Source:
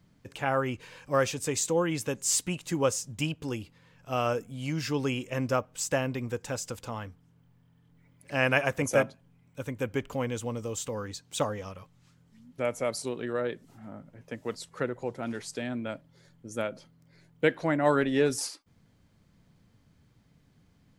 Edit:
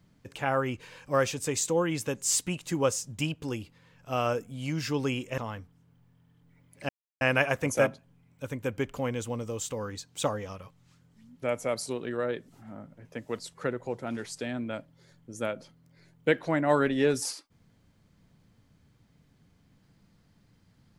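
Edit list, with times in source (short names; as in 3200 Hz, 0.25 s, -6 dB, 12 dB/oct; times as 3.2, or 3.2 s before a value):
5.38–6.86 cut
8.37 insert silence 0.32 s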